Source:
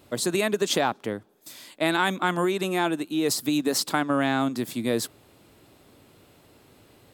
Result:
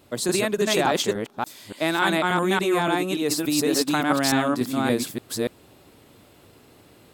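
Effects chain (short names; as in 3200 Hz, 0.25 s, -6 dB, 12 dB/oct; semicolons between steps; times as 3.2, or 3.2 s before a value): reverse delay 0.288 s, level 0 dB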